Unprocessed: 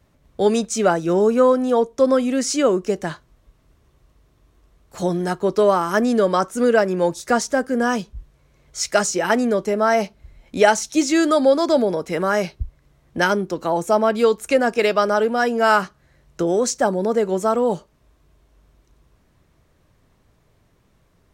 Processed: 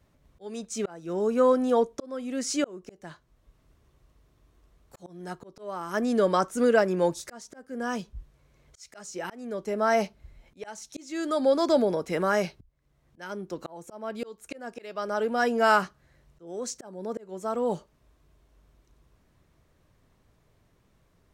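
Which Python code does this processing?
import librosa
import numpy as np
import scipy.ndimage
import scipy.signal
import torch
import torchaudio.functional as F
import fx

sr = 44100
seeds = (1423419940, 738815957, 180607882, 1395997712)

y = fx.auto_swell(x, sr, attack_ms=673.0)
y = y * 10.0 ** (-5.0 / 20.0)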